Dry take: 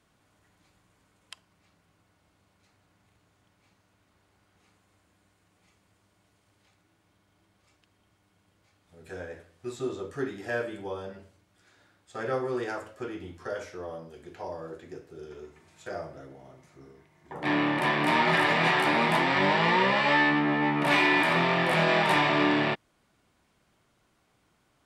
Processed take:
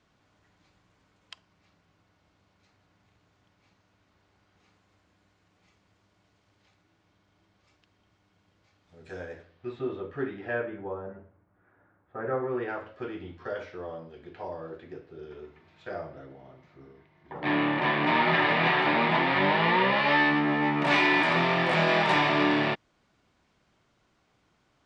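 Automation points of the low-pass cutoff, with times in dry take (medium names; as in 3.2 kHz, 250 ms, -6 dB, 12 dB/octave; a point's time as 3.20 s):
low-pass 24 dB/octave
9.33 s 6.4 kHz
9.77 s 3.1 kHz
10.46 s 3.1 kHz
10.99 s 1.6 kHz
12.20 s 1.6 kHz
12.96 s 4.1 kHz
19.87 s 4.1 kHz
20.58 s 6.9 kHz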